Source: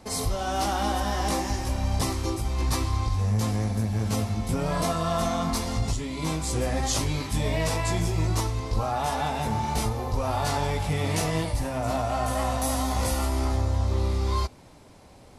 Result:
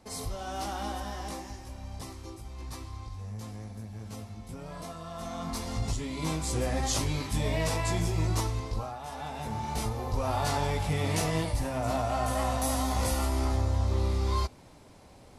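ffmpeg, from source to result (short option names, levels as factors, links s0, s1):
-af "volume=5.96,afade=t=out:st=0.87:d=0.74:silence=0.473151,afade=t=in:st=5.14:d=0.9:silence=0.251189,afade=t=out:st=8.56:d=0.43:silence=0.266073,afade=t=in:st=8.99:d=1.3:silence=0.251189"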